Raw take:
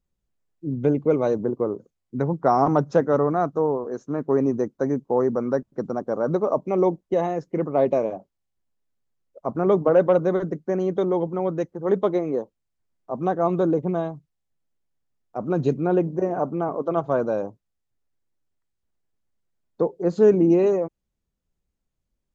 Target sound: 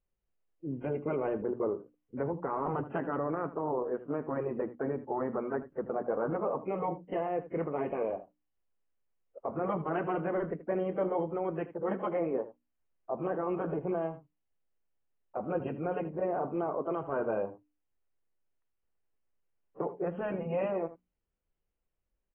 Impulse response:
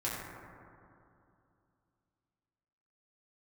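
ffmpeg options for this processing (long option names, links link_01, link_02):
-af "bandreject=frequency=60:width_type=h:width=6,bandreject=frequency=120:width_type=h:width=6,bandreject=frequency=180:width_type=h:width=6,bandreject=frequency=240:width_type=h:width=6,bandreject=frequency=300:width_type=h:width=6,afftfilt=real='re*lt(hypot(re,im),0.708)':imag='im*lt(hypot(re,im),0.708)':win_size=1024:overlap=0.75,equalizer=frequency=125:width_type=o:width=1:gain=-6,equalizer=frequency=250:width_type=o:width=1:gain=-4,equalizer=frequency=500:width_type=o:width=1:gain=3,alimiter=limit=-19.5dB:level=0:latency=1:release=13,asuperstop=centerf=3800:order=12:qfactor=2.7,aecho=1:1:79:0.178,volume=-4.5dB" -ar 24000 -c:a aac -b:a 16k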